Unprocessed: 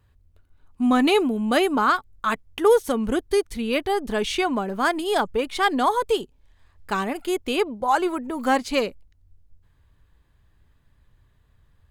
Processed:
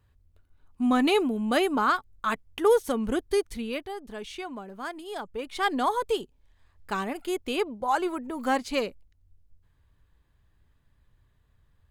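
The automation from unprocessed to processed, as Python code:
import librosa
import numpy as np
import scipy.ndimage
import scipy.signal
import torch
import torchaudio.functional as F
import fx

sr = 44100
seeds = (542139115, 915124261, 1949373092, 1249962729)

y = fx.gain(x, sr, db=fx.line((3.54, -4.0), (3.94, -14.0), (5.21, -14.0), (5.66, -5.0)))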